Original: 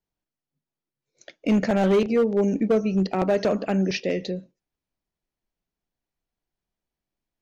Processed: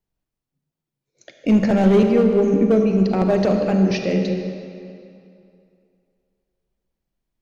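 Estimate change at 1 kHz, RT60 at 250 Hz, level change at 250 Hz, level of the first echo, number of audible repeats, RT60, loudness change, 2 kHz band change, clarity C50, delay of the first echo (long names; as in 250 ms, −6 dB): +2.5 dB, 2.5 s, +6.5 dB, no echo audible, no echo audible, 2.5 s, +5.0 dB, +1.5 dB, 4.5 dB, no echo audible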